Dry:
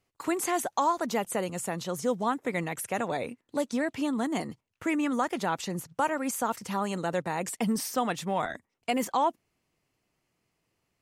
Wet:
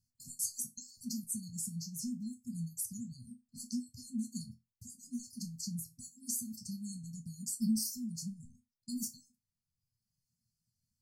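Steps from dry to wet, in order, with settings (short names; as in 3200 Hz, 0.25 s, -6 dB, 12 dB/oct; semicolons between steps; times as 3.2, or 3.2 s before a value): reverb removal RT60 1.2 s; brick-wall FIR band-stop 240–4200 Hz; resonator bank E2 sus4, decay 0.21 s; gain +9 dB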